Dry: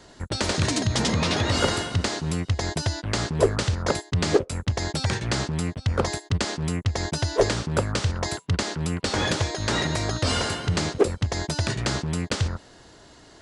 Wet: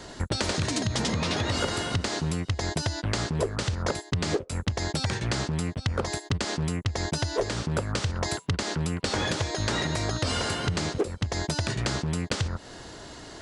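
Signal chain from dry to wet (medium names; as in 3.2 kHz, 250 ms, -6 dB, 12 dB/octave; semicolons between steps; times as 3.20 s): compression 6:1, threshold -32 dBFS, peak gain reduction 18 dB; trim +7 dB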